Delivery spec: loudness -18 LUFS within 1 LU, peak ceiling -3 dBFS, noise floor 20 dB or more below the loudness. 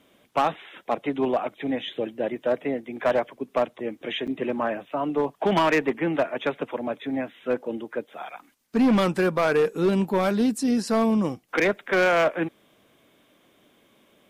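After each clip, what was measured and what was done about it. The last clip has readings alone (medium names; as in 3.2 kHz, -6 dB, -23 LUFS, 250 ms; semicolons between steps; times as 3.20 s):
clipped samples 1.6%; clipping level -15.5 dBFS; dropouts 1; longest dropout 7.1 ms; loudness -25.0 LUFS; peak level -15.5 dBFS; loudness target -18.0 LUFS
-> clip repair -15.5 dBFS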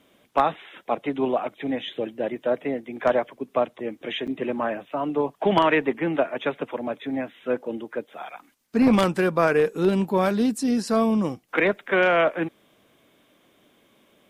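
clipped samples 0.0%; dropouts 1; longest dropout 7.1 ms
-> interpolate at 4.27 s, 7.1 ms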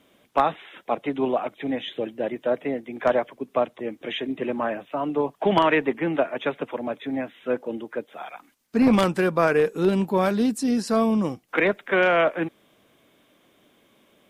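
dropouts 0; loudness -24.5 LUFS; peak level -6.5 dBFS; loudness target -18.0 LUFS
-> trim +6.5 dB; peak limiter -3 dBFS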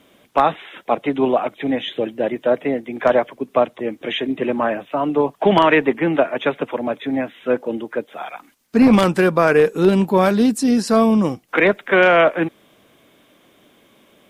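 loudness -18.0 LUFS; peak level -3.0 dBFS; noise floor -55 dBFS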